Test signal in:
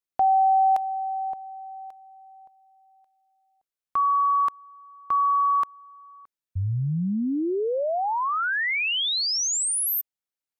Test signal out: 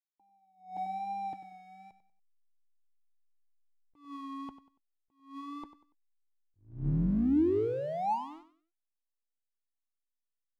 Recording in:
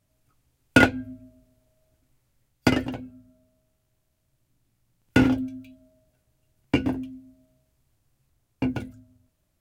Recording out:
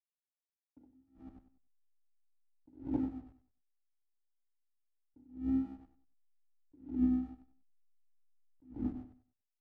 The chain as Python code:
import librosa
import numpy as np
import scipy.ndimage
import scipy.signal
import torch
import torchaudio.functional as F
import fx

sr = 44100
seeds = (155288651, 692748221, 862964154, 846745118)

p1 = fx.octave_divider(x, sr, octaves=2, level_db=-4.0)
p2 = fx.formant_cascade(p1, sr, vowel='u')
p3 = fx.over_compress(p2, sr, threshold_db=-36.0, ratio=-1.0)
p4 = p2 + (p3 * librosa.db_to_amplitude(2.0))
p5 = np.clip(p4, -10.0 ** (-11.0 / 20.0), 10.0 ** (-11.0 / 20.0))
p6 = fx.env_lowpass(p5, sr, base_hz=640.0, full_db=-27.5)
p7 = fx.backlash(p6, sr, play_db=-43.0)
p8 = fx.vibrato(p7, sr, rate_hz=1.1, depth_cents=56.0)
p9 = p8 + fx.echo_feedback(p8, sr, ms=95, feedback_pct=32, wet_db=-13, dry=0)
y = fx.attack_slew(p9, sr, db_per_s=140.0)